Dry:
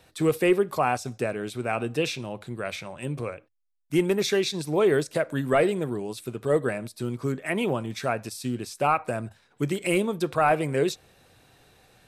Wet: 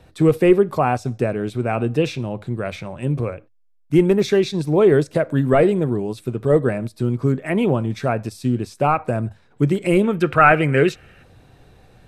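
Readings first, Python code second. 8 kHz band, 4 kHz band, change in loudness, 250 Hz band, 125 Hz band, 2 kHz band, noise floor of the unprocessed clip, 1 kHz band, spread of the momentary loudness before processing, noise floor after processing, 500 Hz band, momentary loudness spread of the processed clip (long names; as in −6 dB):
can't be measured, 0.0 dB, +7.5 dB, +8.5 dB, +11.0 dB, +6.5 dB, −63 dBFS, +6.0 dB, 11 LU, −55 dBFS, +7.0 dB, 11 LU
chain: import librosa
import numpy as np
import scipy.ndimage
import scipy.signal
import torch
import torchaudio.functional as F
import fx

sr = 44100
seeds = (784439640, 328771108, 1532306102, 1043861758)

y = fx.spec_box(x, sr, start_s=10.04, length_s=1.19, low_hz=1200.0, high_hz=3200.0, gain_db=11)
y = fx.tilt_eq(y, sr, slope=-2.5)
y = y * librosa.db_to_amplitude(4.0)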